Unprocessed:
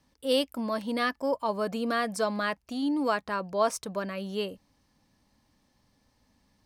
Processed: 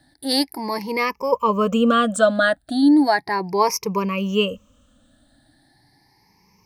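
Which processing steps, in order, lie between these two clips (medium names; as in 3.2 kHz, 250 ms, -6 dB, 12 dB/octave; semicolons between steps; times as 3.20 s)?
drifting ripple filter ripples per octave 0.8, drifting +0.36 Hz, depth 21 dB; 0.97–3.47 s: peaking EQ 7.9 kHz -2.5 dB 2.9 oct; trim +6 dB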